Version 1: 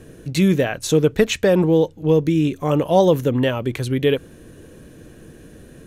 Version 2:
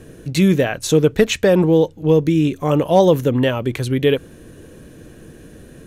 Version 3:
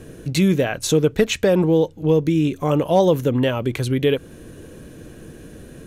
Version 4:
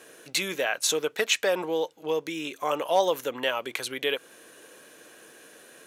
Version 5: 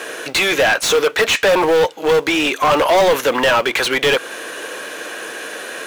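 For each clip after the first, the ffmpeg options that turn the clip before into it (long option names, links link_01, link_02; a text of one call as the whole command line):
ffmpeg -i in.wav -af "asoftclip=type=hard:threshold=-5.5dB,volume=2dB" out.wav
ffmpeg -i in.wav -filter_complex "[0:a]bandreject=frequency=1800:width=26,asplit=2[link_01][link_02];[link_02]acompressor=threshold=-22dB:ratio=6,volume=0dB[link_03];[link_01][link_03]amix=inputs=2:normalize=0,volume=-5dB" out.wav
ffmpeg -i in.wav -af "highpass=790" out.wav
ffmpeg -i in.wav -filter_complex "[0:a]acrusher=bits=5:mode=log:mix=0:aa=0.000001,asplit=2[link_01][link_02];[link_02]highpass=frequency=720:poles=1,volume=30dB,asoftclip=type=tanh:threshold=-7.5dB[link_03];[link_01][link_03]amix=inputs=2:normalize=0,lowpass=frequency=2800:poles=1,volume=-6dB,volume=2.5dB" out.wav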